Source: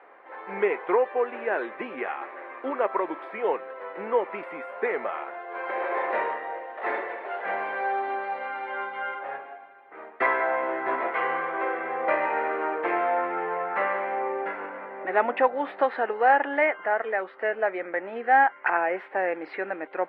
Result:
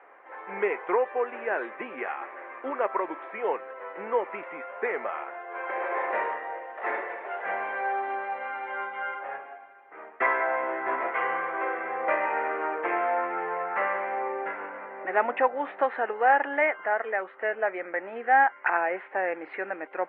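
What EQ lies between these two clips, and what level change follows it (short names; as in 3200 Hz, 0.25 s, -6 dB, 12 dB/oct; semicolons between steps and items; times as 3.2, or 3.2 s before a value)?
LPF 2900 Hz 24 dB/oct; low shelf 470 Hz -5.5 dB; 0.0 dB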